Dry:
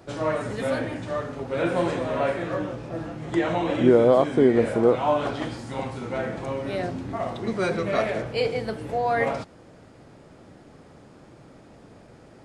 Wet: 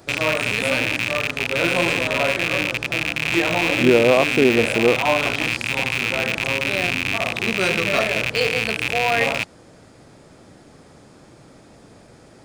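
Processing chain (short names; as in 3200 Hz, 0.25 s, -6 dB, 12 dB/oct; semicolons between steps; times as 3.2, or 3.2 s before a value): rattling part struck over -36 dBFS, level -13 dBFS; high shelf 3400 Hz +9.5 dB; notch 2900 Hz, Q 25; gain +1.5 dB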